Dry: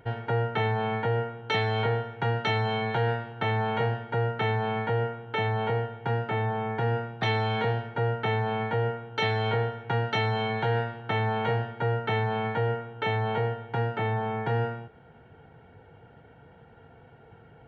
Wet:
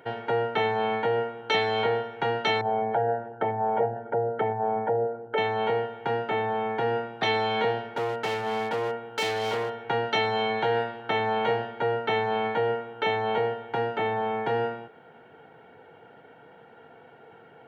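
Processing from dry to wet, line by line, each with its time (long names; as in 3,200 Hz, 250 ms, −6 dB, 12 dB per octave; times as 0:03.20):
0:02.61–0:05.38: spectral envelope exaggerated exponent 2
0:07.81–0:09.74: hard clipping −26.5 dBFS
whole clip: high-pass filter 280 Hz 12 dB per octave; dynamic equaliser 1,500 Hz, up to −4 dB, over −44 dBFS, Q 1.2; level +4.5 dB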